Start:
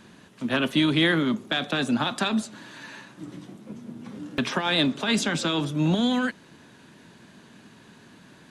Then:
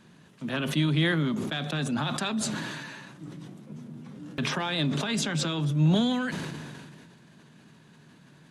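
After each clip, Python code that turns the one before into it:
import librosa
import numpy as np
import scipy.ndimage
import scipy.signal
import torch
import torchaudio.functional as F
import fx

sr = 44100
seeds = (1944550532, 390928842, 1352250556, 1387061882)

y = fx.peak_eq(x, sr, hz=150.0, db=13.0, octaves=0.28)
y = fx.sustainer(y, sr, db_per_s=27.0)
y = y * librosa.db_to_amplitude(-7.0)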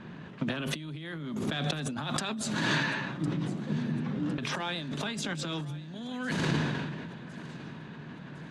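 y = fx.env_lowpass(x, sr, base_hz=2400.0, full_db=-24.5)
y = fx.over_compress(y, sr, threshold_db=-37.0, ratio=-1.0)
y = fx.echo_feedback(y, sr, ms=1057, feedback_pct=49, wet_db=-19.0)
y = y * librosa.db_to_amplitude(3.5)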